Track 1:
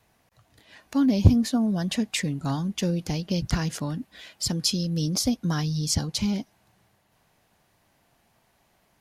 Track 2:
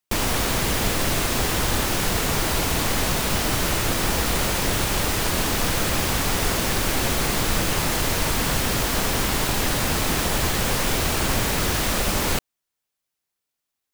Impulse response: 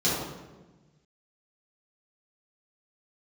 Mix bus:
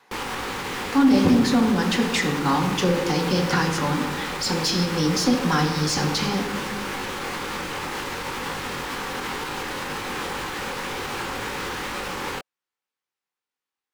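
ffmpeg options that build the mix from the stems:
-filter_complex "[0:a]highpass=f=350:p=1,volume=0dB,asplit=2[a][b];[b]volume=-16.5dB[c];[1:a]flanger=delay=19:depth=4.7:speed=2,alimiter=limit=-17dB:level=0:latency=1:release=64,volume=-9dB[d];[2:a]atrim=start_sample=2205[e];[c][e]afir=irnorm=-1:irlink=0[f];[a][d][f]amix=inputs=3:normalize=0,asuperstop=centerf=650:order=4:qfactor=4.3,asplit=2[g][h];[h]highpass=f=720:p=1,volume=21dB,asoftclip=type=tanh:threshold=-4.5dB[i];[g][i]amix=inputs=2:normalize=0,lowpass=f=1.4k:p=1,volume=-6dB"

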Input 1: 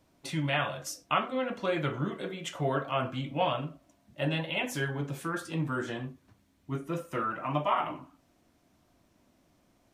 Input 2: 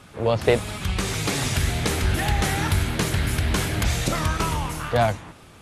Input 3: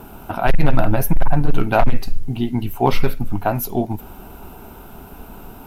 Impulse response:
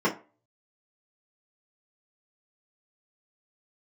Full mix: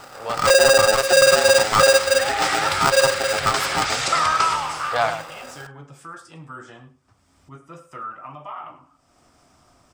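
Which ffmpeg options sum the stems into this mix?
-filter_complex "[0:a]equalizer=f=4.2k:t=o:w=0.22:g=-5.5,alimiter=limit=-23dB:level=0:latency=1:release=82,acompressor=mode=upward:threshold=-34dB:ratio=2.5,adelay=800,volume=-7.5dB,asplit=2[a][b];[b]volume=-17.5dB[c];[1:a]dynaudnorm=f=270:g=5:m=10.5dB,bandpass=f=2.1k:t=q:w=0.5:csg=0,volume=-3.5dB,asplit=2[d][e];[e]volume=-9dB[f];[2:a]aeval=exprs='val(0)*sgn(sin(2*PI*540*n/s))':c=same,volume=-6.5dB,asplit=2[g][h];[h]apad=whole_len=247414[i];[d][i]sidechaincompress=threshold=-22dB:ratio=8:attack=16:release=585[j];[c][f]amix=inputs=2:normalize=0,aecho=0:1:103:1[k];[a][j][g][k]amix=inputs=4:normalize=0,equalizer=f=200:t=o:w=0.33:g=-7,equalizer=f=315:t=o:w=0.33:g=-5,equalizer=f=800:t=o:w=0.33:g=5,equalizer=f=1.25k:t=o:w=0.33:g=10,equalizer=f=5k:t=o:w=0.33:g=9,equalizer=f=8k:t=o:w=0.33:g=9,equalizer=f=12.5k:t=o:w=0.33:g=-11"

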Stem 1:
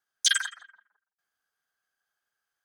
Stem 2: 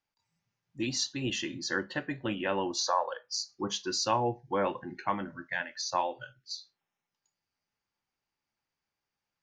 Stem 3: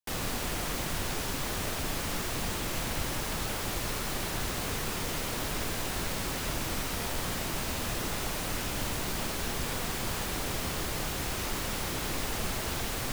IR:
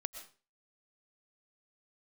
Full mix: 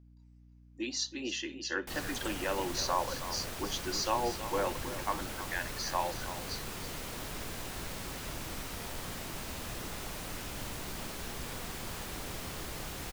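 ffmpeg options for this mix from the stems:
-filter_complex "[0:a]adelay=1900,volume=-9dB[a];[1:a]highpass=f=260:w=0.5412,highpass=f=260:w=1.3066,volume=-3dB,asplit=3[b][c][d];[c]volume=-11.5dB[e];[2:a]adelay=1800,volume=-7.5dB[f];[d]apad=whole_len=200389[g];[a][g]sidechaincompress=threshold=-46dB:ratio=8:attack=16:release=508[h];[e]aecho=0:1:324:1[i];[h][b][f][i]amix=inputs=4:normalize=0,aeval=exprs='val(0)+0.00158*(sin(2*PI*60*n/s)+sin(2*PI*2*60*n/s)/2+sin(2*PI*3*60*n/s)/3+sin(2*PI*4*60*n/s)/4+sin(2*PI*5*60*n/s)/5)':c=same"

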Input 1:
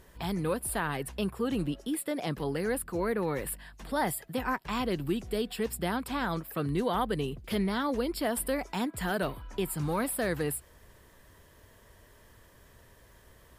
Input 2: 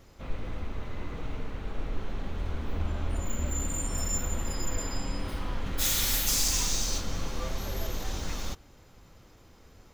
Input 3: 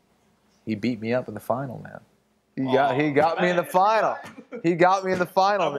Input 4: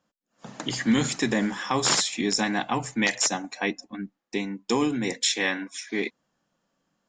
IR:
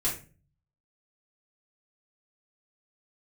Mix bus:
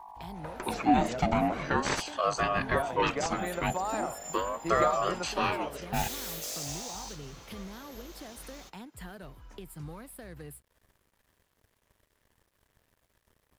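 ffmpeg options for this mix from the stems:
-filter_complex "[0:a]acrossover=split=130[a][b];[b]acompressor=threshold=-38dB:ratio=10[c];[a][c]amix=inputs=2:normalize=0,aeval=exprs='sgn(val(0))*max(abs(val(0))-0.00168,0)':c=same,volume=-4.5dB[d];[1:a]highpass=f=510:p=1,adelay=150,volume=-10.5dB[e];[2:a]volume=-14dB[f];[3:a]lowpass=f=1.3k:p=1,aeval=exprs='val(0)+0.00562*(sin(2*PI*50*n/s)+sin(2*PI*2*50*n/s)/2+sin(2*PI*3*50*n/s)/3+sin(2*PI*4*50*n/s)/4+sin(2*PI*5*50*n/s)/5)':c=same,aeval=exprs='val(0)*sin(2*PI*680*n/s+680*0.35/0.41*sin(2*PI*0.41*n/s))':c=same,volume=1.5dB[g];[d][e][f][g]amix=inputs=4:normalize=0"

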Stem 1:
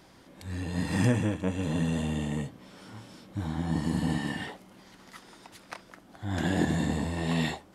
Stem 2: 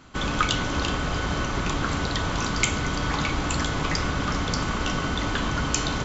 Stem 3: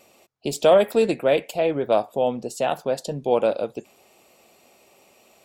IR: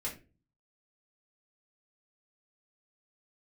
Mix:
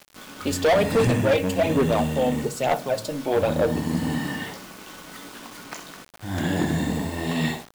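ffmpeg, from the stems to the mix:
-filter_complex "[0:a]acontrast=28,volume=-3.5dB,asplit=3[a][b][c];[b]volume=-9.5dB[d];[c]volume=-8dB[e];[1:a]highpass=f=170:w=0.5412,highpass=f=170:w=1.3066,flanger=delay=16.5:depth=2.8:speed=0.91,volume=-14dB,asplit=3[f][g][h];[g]volume=-16.5dB[i];[h]volume=-11dB[j];[2:a]aphaser=in_gain=1:out_gain=1:delay=3.8:decay=0.64:speed=1.1:type=sinusoidal,volume=-3dB,asplit=3[k][l][m];[l]volume=-8.5dB[n];[m]apad=whole_len=266707[o];[f][o]sidechaincompress=threshold=-25dB:ratio=8:attack=16:release=833[p];[3:a]atrim=start_sample=2205[q];[d][i][n]amix=inputs=3:normalize=0[r];[r][q]afir=irnorm=-1:irlink=0[s];[e][j]amix=inputs=2:normalize=0,aecho=0:1:63|126|189|252:1|0.22|0.0484|0.0106[t];[a][p][k][s][t]amix=inputs=5:normalize=0,asoftclip=type=hard:threshold=-15dB,acrusher=bits=6:mix=0:aa=0.000001"

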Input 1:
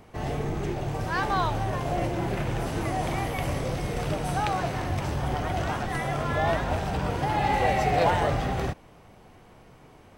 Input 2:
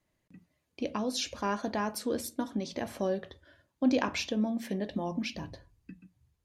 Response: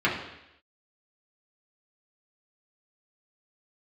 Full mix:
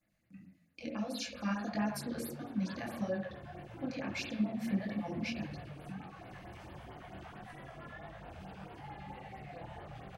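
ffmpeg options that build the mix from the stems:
-filter_complex "[0:a]acrossover=split=88|220[a][b][c];[a]acompressor=threshold=-38dB:ratio=4[d];[b]acompressor=threshold=-39dB:ratio=4[e];[c]acompressor=threshold=-32dB:ratio=4[f];[d][e][f]amix=inputs=3:normalize=0,adelay=1550,volume=-17.5dB,asplit=2[g][h];[h]volume=-11dB[i];[1:a]equalizer=f=400:t=o:w=0.33:g=-11,equalizer=f=1k:t=o:w=0.33:g=-10,equalizer=f=3.15k:t=o:w=0.33:g=-7,alimiter=level_in=4.5dB:limit=-24dB:level=0:latency=1:release=473,volume=-4.5dB,volume=-0.5dB,asplit=3[j][k][l];[k]volume=-10.5dB[m];[l]apad=whole_len=517120[n];[g][n]sidechaincompress=threshold=-53dB:ratio=8:attack=16:release=416[o];[2:a]atrim=start_sample=2205[p];[i][m]amix=inputs=2:normalize=0[q];[q][p]afir=irnorm=-1:irlink=0[r];[o][j][r]amix=inputs=3:normalize=0,flanger=delay=18:depth=8:speed=1.6,afftfilt=real='re*(1-between(b*sr/1024,270*pow(7400/270,0.5+0.5*sin(2*PI*4.5*pts/sr))/1.41,270*pow(7400/270,0.5+0.5*sin(2*PI*4.5*pts/sr))*1.41))':imag='im*(1-between(b*sr/1024,270*pow(7400/270,0.5+0.5*sin(2*PI*4.5*pts/sr))/1.41,270*pow(7400/270,0.5+0.5*sin(2*PI*4.5*pts/sr))*1.41))':win_size=1024:overlap=0.75"

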